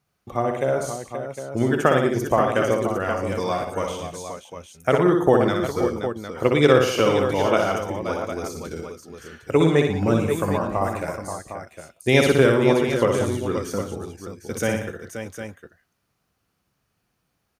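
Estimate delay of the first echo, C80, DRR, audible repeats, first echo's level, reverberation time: 61 ms, none, none, 5, -4.5 dB, none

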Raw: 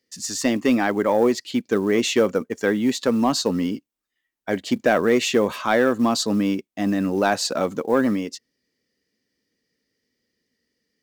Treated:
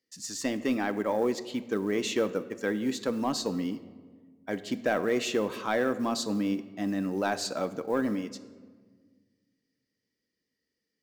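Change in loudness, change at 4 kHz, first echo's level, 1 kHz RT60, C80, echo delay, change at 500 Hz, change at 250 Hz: -9.0 dB, -9.0 dB, none, 1.5 s, 15.5 dB, none, -9.0 dB, -8.5 dB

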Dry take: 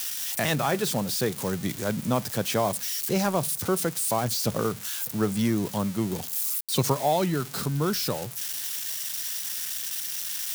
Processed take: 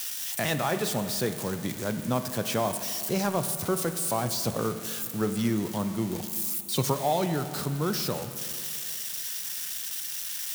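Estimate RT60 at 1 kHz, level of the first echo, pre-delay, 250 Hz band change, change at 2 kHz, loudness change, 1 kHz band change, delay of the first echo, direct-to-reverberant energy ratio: 2.4 s, none, 14 ms, -2.0 dB, -2.0 dB, -2.0 dB, -2.0 dB, none, 8.0 dB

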